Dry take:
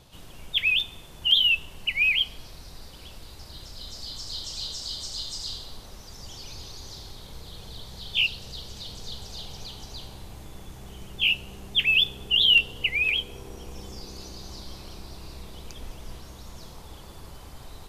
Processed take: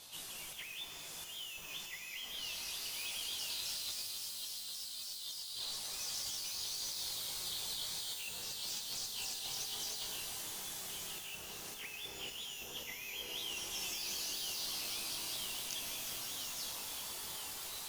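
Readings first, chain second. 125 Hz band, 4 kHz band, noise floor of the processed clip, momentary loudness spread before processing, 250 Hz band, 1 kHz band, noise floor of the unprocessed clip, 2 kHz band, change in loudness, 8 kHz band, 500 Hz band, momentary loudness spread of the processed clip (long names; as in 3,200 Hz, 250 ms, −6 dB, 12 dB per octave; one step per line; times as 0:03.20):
−18.5 dB, −14.0 dB, −48 dBFS, 23 LU, −12.0 dB, −3.5 dB, −45 dBFS, −20.0 dB, −16.5 dB, +5.0 dB, −8.5 dB, 6 LU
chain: chorus effect 0.16 Hz, delay 18 ms, depth 3.7 ms
spectral tilt +4 dB per octave
mains-hum notches 50/100 Hz
reverb reduction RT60 0.52 s
on a send: delay with a high-pass on its return 979 ms, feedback 66%, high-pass 4,800 Hz, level −18 dB
on the sum: soft clipping −15.5 dBFS, distortion −12 dB
treble cut that deepens with the level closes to 1,300 Hz, closed at −21 dBFS
compressor whose output falls as the input rises −42 dBFS, ratio −1
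reverb with rising layers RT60 3.9 s, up +12 semitones, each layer −2 dB, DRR 3.5 dB
level −3.5 dB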